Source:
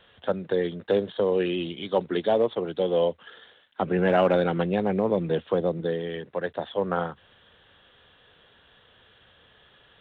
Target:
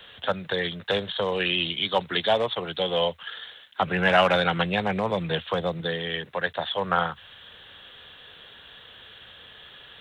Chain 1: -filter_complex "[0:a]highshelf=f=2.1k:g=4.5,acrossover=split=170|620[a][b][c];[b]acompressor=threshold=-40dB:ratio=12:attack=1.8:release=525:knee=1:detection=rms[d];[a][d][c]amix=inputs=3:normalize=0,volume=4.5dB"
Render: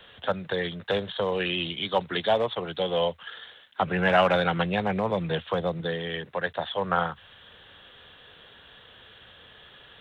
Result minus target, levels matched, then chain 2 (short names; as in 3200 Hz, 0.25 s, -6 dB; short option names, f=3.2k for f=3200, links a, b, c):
4000 Hz band -3.5 dB
-filter_complex "[0:a]highshelf=f=2.1k:g=11.5,acrossover=split=170|620[a][b][c];[b]acompressor=threshold=-40dB:ratio=12:attack=1.8:release=525:knee=1:detection=rms[d];[a][d][c]amix=inputs=3:normalize=0,volume=4.5dB"